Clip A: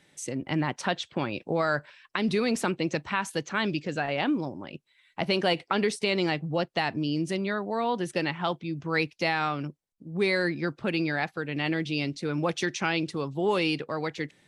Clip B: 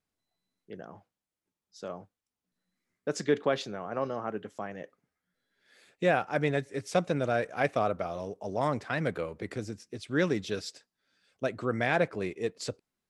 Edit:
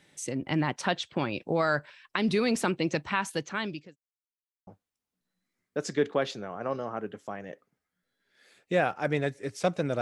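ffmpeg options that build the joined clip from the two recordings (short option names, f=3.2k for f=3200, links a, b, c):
-filter_complex "[0:a]apad=whole_dur=10.01,atrim=end=10.01,asplit=2[a][b];[a]atrim=end=3.96,asetpts=PTS-STARTPTS,afade=t=out:st=3.07:d=0.89:c=qsin[c];[b]atrim=start=3.96:end=4.67,asetpts=PTS-STARTPTS,volume=0[d];[1:a]atrim=start=1.98:end=7.32,asetpts=PTS-STARTPTS,afade=t=in:d=0.004:c=hsin[e];[c][d][e]concat=n=3:v=0:a=1"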